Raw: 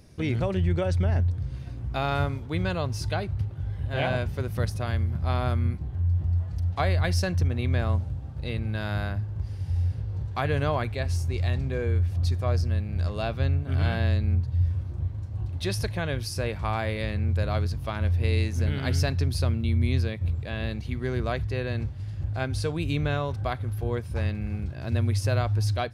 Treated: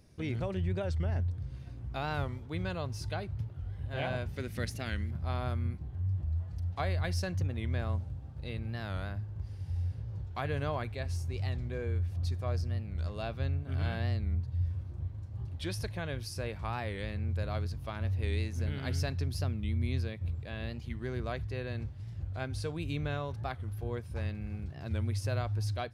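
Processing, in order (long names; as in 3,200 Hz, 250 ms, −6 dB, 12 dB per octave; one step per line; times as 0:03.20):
0:04.36–0:05.11: graphic EQ with 10 bands 125 Hz −4 dB, 250 Hz +6 dB, 1,000 Hz −6 dB, 2,000 Hz +9 dB, 4,000 Hz +4 dB, 8,000 Hz +6 dB
wow of a warped record 45 rpm, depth 160 cents
level −8 dB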